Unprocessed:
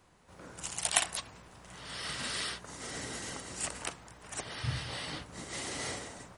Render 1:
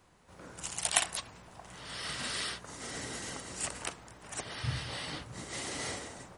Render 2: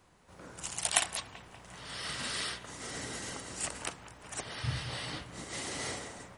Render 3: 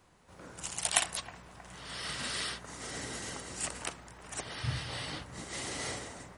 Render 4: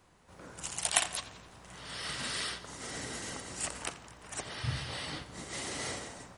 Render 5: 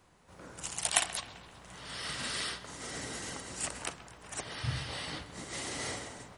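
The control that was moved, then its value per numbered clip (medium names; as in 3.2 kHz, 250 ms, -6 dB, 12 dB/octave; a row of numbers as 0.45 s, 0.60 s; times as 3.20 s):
bucket-brigade echo, time: 626 ms, 192 ms, 316 ms, 86 ms, 130 ms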